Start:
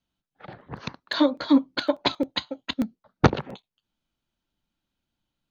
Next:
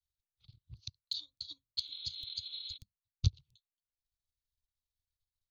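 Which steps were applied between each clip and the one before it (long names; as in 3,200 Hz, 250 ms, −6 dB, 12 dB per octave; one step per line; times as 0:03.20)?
healed spectral selection 0:01.82–0:02.75, 410–4,200 Hz before
elliptic band-stop filter 100–4,100 Hz, stop band 40 dB
transient designer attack +6 dB, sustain −10 dB
level −7.5 dB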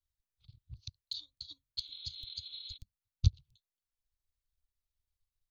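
low-shelf EQ 79 Hz +12 dB
level −2.5 dB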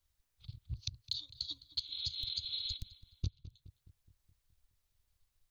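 downward compressor 8 to 1, threshold −44 dBFS, peak gain reduction 24.5 dB
feedback echo with a low-pass in the loop 210 ms, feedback 55%, low-pass 2,900 Hz, level −14.5 dB
level +9.5 dB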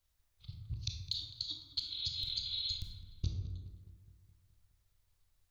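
convolution reverb RT60 1.4 s, pre-delay 17 ms, DRR 1 dB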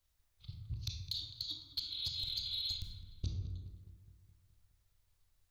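soft clipping −28 dBFS, distortion −17 dB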